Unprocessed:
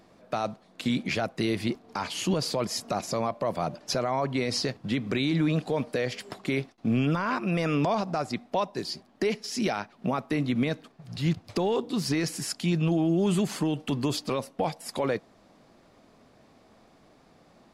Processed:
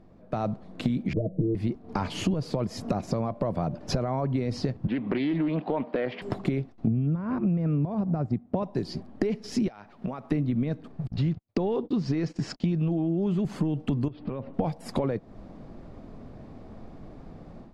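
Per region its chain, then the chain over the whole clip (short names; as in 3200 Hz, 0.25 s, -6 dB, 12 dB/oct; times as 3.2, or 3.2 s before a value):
1.13–1.55 steep low-pass 640 Hz 96 dB/oct + comb 6.4 ms, depth 84% + de-hum 187.1 Hz, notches 32
4.87–6.22 speaker cabinet 340–3500 Hz, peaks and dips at 450 Hz -6 dB, 940 Hz +5 dB, 1400 Hz -3 dB + Doppler distortion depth 0.18 ms
6.87–8.63 G.711 law mismatch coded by A + HPF 110 Hz + RIAA curve playback
9.68–10.32 low shelf 430 Hz -12 dB + compressor, threshold -40 dBFS
11.07–13.45 LPF 6400 Hz 24 dB/oct + low shelf 140 Hz -8 dB + gate -41 dBFS, range -41 dB
14.08–14.54 inverse Chebyshev low-pass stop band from 7500 Hz, stop band 50 dB + compressor 10:1, threshold -39 dBFS
whole clip: AGC gain up to 11 dB; tilt -4 dB/oct; compressor 10:1, threshold -18 dBFS; gain -5.5 dB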